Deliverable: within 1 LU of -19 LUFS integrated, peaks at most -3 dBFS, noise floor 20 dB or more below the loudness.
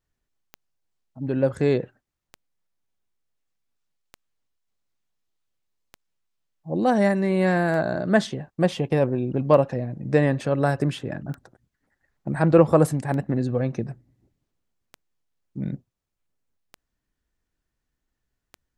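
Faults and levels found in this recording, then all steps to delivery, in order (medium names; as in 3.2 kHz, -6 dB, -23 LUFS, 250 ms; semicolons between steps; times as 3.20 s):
clicks found 11; loudness -23.0 LUFS; peak level -3.0 dBFS; loudness target -19.0 LUFS
-> de-click; trim +4 dB; peak limiter -3 dBFS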